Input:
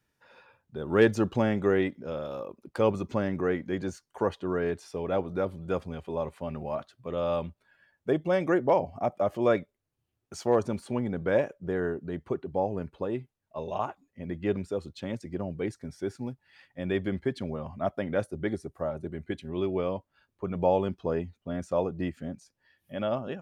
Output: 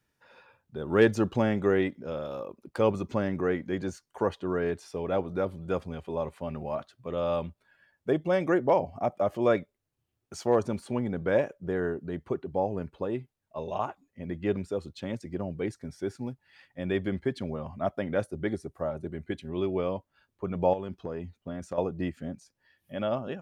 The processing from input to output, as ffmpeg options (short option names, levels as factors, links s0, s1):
-filter_complex "[0:a]asettb=1/sr,asplit=3[s0][s1][s2];[s0]atrim=end=20.734[s3];[s1]atrim=start=20.73:end=21.78,asetpts=PTS-STARTPTS,afade=t=in:d=0.004:c=qsin,afade=t=out:st=1.046:d=0.004:c=qsin,acompressor=threshold=0.0316:ratio=6:attack=3.2:release=140:knee=1:detection=peak[s4];[s2]atrim=start=21.776[s5];[s3][s4]acrossfade=d=0.004:c1=hsin:c2=qsin[s6];[s6][s5]acrossfade=d=0.004:c1=qsin:c2=hsin"